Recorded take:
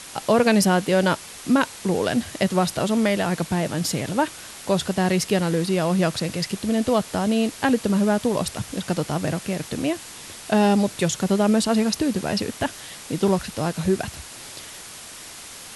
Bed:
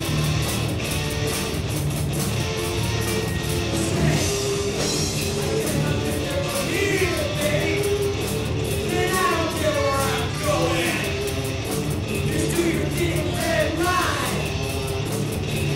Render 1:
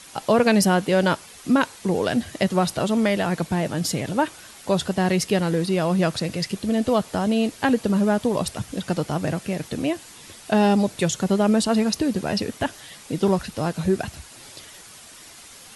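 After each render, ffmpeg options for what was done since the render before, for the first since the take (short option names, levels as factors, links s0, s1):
-af "afftdn=nr=7:nf=-40"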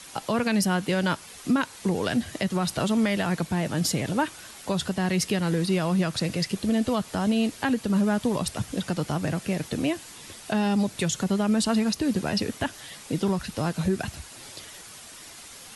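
-filter_complex "[0:a]acrossover=split=340|830[s0][s1][s2];[s1]acompressor=threshold=0.0224:ratio=6[s3];[s0][s3][s2]amix=inputs=3:normalize=0,alimiter=limit=0.178:level=0:latency=1:release=167"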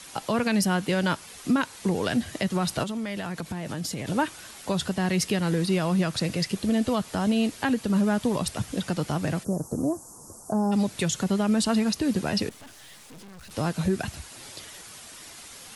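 -filter_complex "[0:a]asettb=1/sr,asplit=3[s0][s1][s2];[s0]atrim=end=2.834[s3];[s1]atrim=start=2.83:end=4.07,asetpts=PTS-STARTPTS,afade=t=in:d=0.004:c=qsin,afade=t=out:st=1.236:d=0.004:c=qsin,acompressor=threshold=0.0398:ratio=6:attack=3.2:release=140:knee=1:detection=peak[s4];[s2]atrim=start=4.066[s5];[s3][s4]acrossfade=d=0.004:c1=hsin:c2=qsin[s6];[s6][s5]acrossfade=d=0.004:c1=qsin:c2=hsin,asplit=3[s7][s8][s9];[s7]afade=t=out:st=9.43:d=0.02[s10];[s8]asuperstop=centerf=2700:order=8:qfactor=0.55,afade=t=in:st=9.43:d=0.02,afade=t=out:st=10.71:d=0.02[s11];[s9]afade=t=in:st=10.71:d=0.02[s12];[s10][s11][s12]amix=inputs=3:normalize=0,asettb=1/sr,asplit=3[s13][s14][s15];[s13]atrim=end=12.494[s16];[s14]atrim=start=12.49:end=13.51,asetpts=PTS-STARTPTS,afade=t=in:d=0.004:c=qsin,afade=t=out:st=1.016:d=0.004:c=qsin,aeval=exprs='(tanh(178*val(0)+0.7)-tanh(0.7))/178':c=same[s17];[s15]atrim=start=13.506[s18];[s16][s17]acrossfade=d=0.004:c1=hsin:c2=qsin[s19];[s19][s18]acrossfade=d=0.004:c1=qsin:c2=hsin"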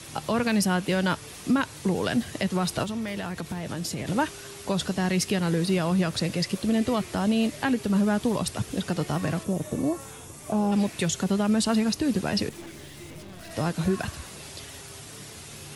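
-filter_complex "[1:a]volume=0.0794[s0];[0:a][s0]amix=inputs=2:normalize=0"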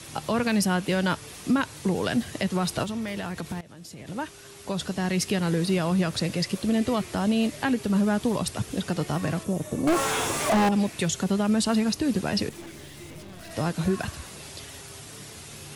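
-filter_complex "[0:a]asettb=1/sr,asplit=3[s0][s1][s2];[s0]atrim=end=9.874[s3];[s1]atrim=start=9.87:end=10.69,asetpts=PTS-STARTPTS,afade=t=in:d=0.004:c=qsin,afade=t=out:st=0.816:d=0.004:c=qsin,asplit=2[s4][s5];[s5]highpass=f=720:p=1,volume=63.1,asoftclip=type=tanh:threshold=0.2[s6];[s4][s6]amix=inputs=2:normalize=0,lowpass=f=2700:p=1,volume=0.501[s7];[s2]atrim=start=10.686[s8];[s3][s7]acrossfade=d=0.004:c1=hsin:c2=qsin[s9];[s9][s8]acrossfade=d=0.004:c1=qsin:c2=hsin,asplit=2[s10][s11];[s10]atrim=end=3.61,asetpts=PTS-STARTPTS,afade=t=out:st=3.606:d=0.004:c=hsin:silence=0.133352[s12];[s11]atrim=start=3.61,asetpts=PTS-STARTPTS,afade=t=in:d=1.74:silence=0.133352[s13];[s12][s13]concat=n=2:v=0:a=1"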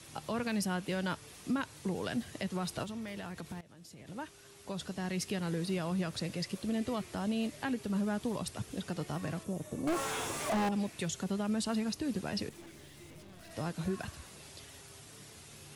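-af "volume=0.316"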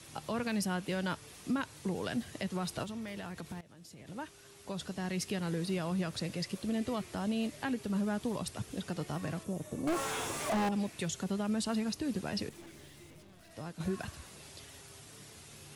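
-filter_complex "[0:a]asplit=2[s0][s1];[s0]atrim=end=13.8,asetpts=PTS-STARTPTS,afade=t=out:st=12.87:d=0.93:c=qua:silence=0.473151[s2];[s1]atrim=start=13.8,asetpts=PTS-STARTPTS,afade=t=in:d=0.004:c=hsin:silence=0.473151[s3];[s2][s3]concat=n=2:v=0:a=1"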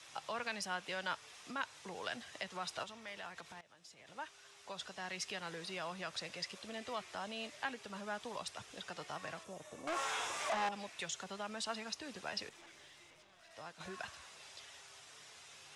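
-filter_complex "[0:a]acrossover=split=590 7900:gain=0.112 1 0.0708[s0][s1][s2];[s0][s1][s2]amix=inputs=3:normalize=0,bandreject=f=4400:w=19"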